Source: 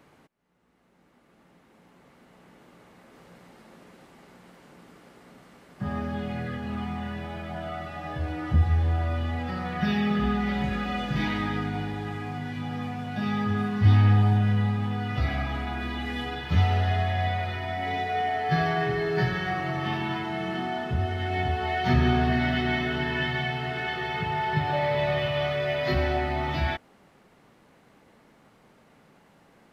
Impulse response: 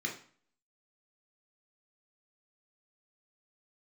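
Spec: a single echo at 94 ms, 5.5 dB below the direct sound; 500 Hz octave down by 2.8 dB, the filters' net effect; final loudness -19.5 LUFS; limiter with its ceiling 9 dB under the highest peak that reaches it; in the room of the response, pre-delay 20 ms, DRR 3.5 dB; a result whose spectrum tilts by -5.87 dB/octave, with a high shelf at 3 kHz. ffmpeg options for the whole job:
-filter_complex "[0:a]equalizer=f=500:t=o:g=-3.5,highshelf=f=3000:g=-8,alimiter=limit=0.119:level=0:latency=1,aecho=1:1:94:0.531,asplit=2[s0][s1];[1:a]atrim=start_sample=2205,adelay=20[s2];[s1][s2]afir=irnorm=-1:irlink=0,volume=0.447[s3];[s0][s3]amix=inputs=2:normalize=0,volume=2.37"

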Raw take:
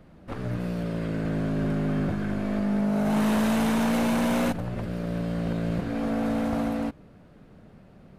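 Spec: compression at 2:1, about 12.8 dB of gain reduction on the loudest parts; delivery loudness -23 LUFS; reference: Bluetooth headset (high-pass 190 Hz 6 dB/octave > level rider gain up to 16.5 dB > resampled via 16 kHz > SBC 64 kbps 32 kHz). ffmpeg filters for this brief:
-af "acompressor=threshold=0.00501:ratio=2,highpass=f=190:p=1,dynaudnorm=m=6.68,aresample=16000,aresample=44100,volume=7.94" -ar 32000 -c:a sbc -b:a 64k

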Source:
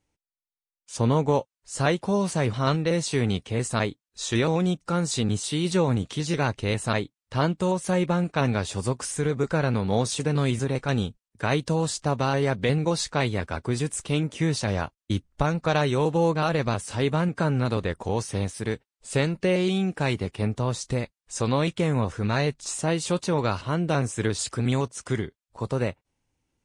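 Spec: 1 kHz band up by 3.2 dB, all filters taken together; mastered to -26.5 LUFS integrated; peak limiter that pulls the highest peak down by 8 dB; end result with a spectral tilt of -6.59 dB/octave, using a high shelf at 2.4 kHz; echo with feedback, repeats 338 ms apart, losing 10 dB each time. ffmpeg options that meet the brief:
-af "equalizer=f=1000:t=o:g=5.5,highshelf=f=2400:g=-8,alimiter=limit=0.168:level=0:latency=1,aecho=1:1:338|676|1014|1352:0.316|0.101|0.0324|0.0104,volume=1.06"

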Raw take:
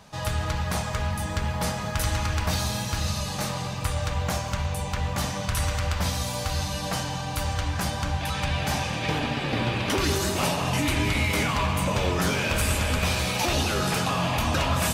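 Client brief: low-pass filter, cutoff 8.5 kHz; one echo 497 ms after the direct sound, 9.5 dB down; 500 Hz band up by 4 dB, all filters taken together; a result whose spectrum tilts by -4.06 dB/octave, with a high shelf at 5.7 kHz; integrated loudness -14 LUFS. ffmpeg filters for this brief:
-af "lowpass=8500,equalizer=f=500:t=o:g=5,highshelf=f=5700:g=5.5,aecho=1:1:497:0.335,volume=3.35"

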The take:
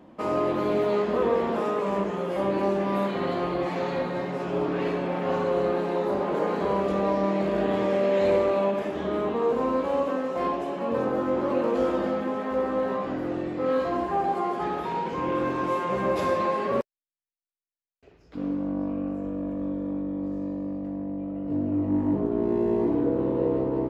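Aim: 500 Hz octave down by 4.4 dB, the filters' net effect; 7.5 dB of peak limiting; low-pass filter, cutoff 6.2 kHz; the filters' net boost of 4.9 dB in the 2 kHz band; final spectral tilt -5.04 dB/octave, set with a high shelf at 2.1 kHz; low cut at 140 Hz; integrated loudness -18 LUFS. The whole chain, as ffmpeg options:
-af "highpass=140,lowpass=6200,equalizer=f=500:t=o:g=-5.5,equalizer=f=2000:t=o:g=8.5,highshelf=f=2100:g=-3.5,volume=4.47,alimiter=limit=0.355:level=0:latency=1"

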